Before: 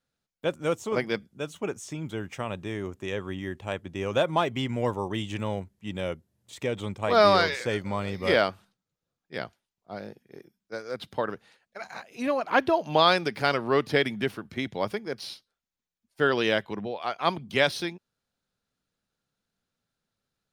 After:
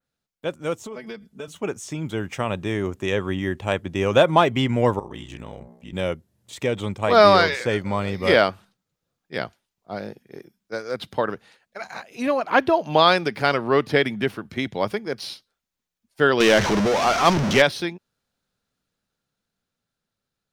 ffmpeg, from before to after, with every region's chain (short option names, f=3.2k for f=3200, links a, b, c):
-filter_complex "[0:a]asettb=1/sr,asplit=3[a][b][c];[a]atrim=end=0.834[d];[b]atrim=start=0.83:end=1.48,asetpts=PTS-STARTPTS,afade=t=in:d=0.004:c=qsin,afade=t=out:st=0.646:d=0.004:c=qsin,aecho=1:1:4.6:0.96,atrim=end_sample=28665,acompressor=threshold=-32dB:ratio=12:attack=3.2:release=140:knee=1:detection=peak[e];[c]atrim=start=1.476[f];[d][e]acrossfade=d=0.004:c1=hsin:c2=qsin[g];[g][f]acrossfade=d=0.004:c1=qsin:c2=hsin,asettb=1/sr,asplit=3[h][i][j];[h]atrim=end=4.994[k];[i]atrim=start=4.99:end=5.93,asetpts=PTS-STARTPTS,afade=t=in:d=0.004:c=qsin,afade=t=out:st=0.936:d=0.004:c=qsin,bandreject=f=67.1:t=h:w=4,bandreject=f=134.2:t=h:w=4,bandreject=f=201.3:t=h:w=4,bandreject=f=268.4:t=h:w=4,bandreject=f=335.5:t=h:w=4,bandreject=f=402.6:t=h:w=4,bandreject=f=469.7:t=h:w=4,bandreject=f=536.8:t=h:w=4,bandreject=f=603.9:t=h:w=4,bandreject=f=671:t=h:w=4,bandreject=f=738.1:t=h:w=4,bandreject=f=805.2:t=h:w=4,bandreject=f=872.3:t=h:w=4,bandreject=f=939.4:t=h:w=4,bandreject=f=1.0065k:t=h:w=4,bandreject=f=1.0736k:t=h:w=4,bandreject=f=1.1407k:t=h:w=4,bandreject=f=1.2078k:t=h:w=4,bandreject=f=1.2749k:t=h:w=4,bandreject=f=1.342k:t=h:w=4,bandreject=f=1.4091k:t=h:w=4,bandreject=f=1.4762k:t=h:w=4,bandreject=f=1.5433k:t=h:w=4,bandreject=f=1.6104k:t=h:w=4,bandreject=f=1.6775k:t=h:w=4,bandreject=f=1.7446k:t=h:w=4,bandreject=f=1.8117k:t=h:w=4,bandreject=f=1.8788k:t=h:w=4,bandreject=f=1.9459k:t=h:w=4,bandreject=f=2.013k:t=h:w=4,bandreject=f=2.0801k:t=h:w=4,acompressor=threshold=-45dB:ratio=2:attack=3.2:release=140:knee=1:detection=peak,aeval=exprs='val(0)*sin(2*PI*31*n/s)':c=same[l];[j]atrim=start=5.926[m];[k][l]acrossfade=d=0.004:c1=hsin:c2=qsin[n];[n][m]acrossfade=d=0.004:c1=qsin:c2=hsin,asettb=1/sr,asplit=3[o][p][q];[o]atrim=end=16.404[r];[p]atrim=start=16.4:end=17.62,asetpts=PTS-STARTPTS,afade=t=in:d=0.004:c=qsin,afade=t=out:st=1.216:d=0.004:c=qsin,aeval=exprs='val(0)+0.5*0.0794*sgn(val(0))':c=same,equalizer=f=5.9k:t=o:w=0.5:g=11,adynamicsmooth=sensitivity=1.5:basefreq=4.1k[s];[q]atrim=start=17.616[t];[r][s]acrossfade=d=0.004:c1=hsin:c2=qsin[u];[u][t]acrossfade=d=0.004:c1=qsin:c2=hsin,dynaudnorm=f=320:g=13:m=11.5dB,adynamicequalizer=threshold=0.0178:dfrequency=3100:dqfactor=0.7:tfrequency=3100:tqfactor=0.7:attack=5:release=100:ratio=0.375:range=2:mode=cutabove:tftype=highshelf"